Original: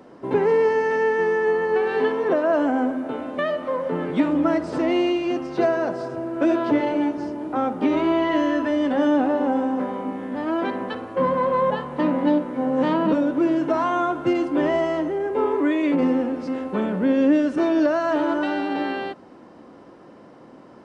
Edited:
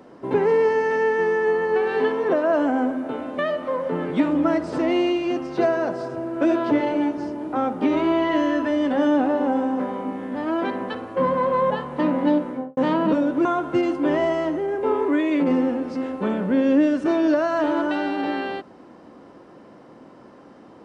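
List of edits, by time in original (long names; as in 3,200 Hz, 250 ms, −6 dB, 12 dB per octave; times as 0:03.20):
0:12.48–0:12.77: fade out and dull
0:13.45–0:13.97: remove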